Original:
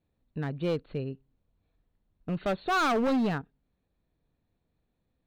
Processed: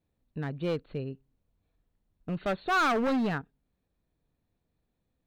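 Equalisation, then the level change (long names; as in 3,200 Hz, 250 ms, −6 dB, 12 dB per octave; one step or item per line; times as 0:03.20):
dynamic equaliser 1,700 Hz, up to +4 dB, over −40 dBFS, Q 1.2
−1.5 dB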